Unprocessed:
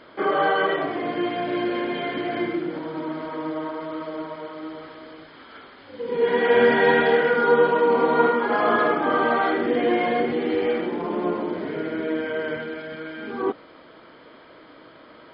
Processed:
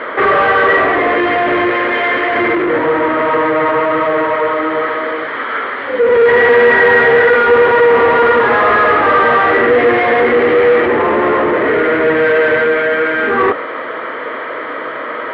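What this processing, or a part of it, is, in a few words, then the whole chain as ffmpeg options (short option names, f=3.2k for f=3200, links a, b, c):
overdrive pedal into a guitar cabinet: -filter_complex "[0:a]asplit=2[a][b];[b]highpass=f=720:p=1,volume=34dB,asoftclip=type=tanh:threshold=-5.5dB[c];[a][c]amix=inputs=2:normalize=0,lowpass=f=1k:p=1,volume=-6dB,highpass=93,equalizer=f=180:t=q:w=4:g=-9,equalizer=f=320:t=q:w=4:g=-4,equalizer=f=480:t=q:w=4:g=4,equalizer=f=770:t=q:w=4:g=-3,equalizer=f=1.2k:t=q:w=4:g=5,equalizer=f=1.9k:t=q:w=4:g=10,lowpass=f=3.4k:w=0.5412,lowpass=f=3.4k:w=1.3066,asettb=1/sr,asplit=3[d][e][f];[d]atrim=end=1.704[g];[e]atrim=start=1.7:end=2.36,asetpts=PTS-STARTPTS,afade=t=in:d=0.004:c=qsin,afade=t=out:st=0.656:d=0.004:c=qsin,lowshelf=f=390:g=-7[h];[f]atrim=start=2.356[i];[g][h]acrossfade=d=0.004:c1=hsin:c2=qsin[j];[j][i]acrossfade=d=0.004:c1=qsin:c2=hsin,volume=1.5dB"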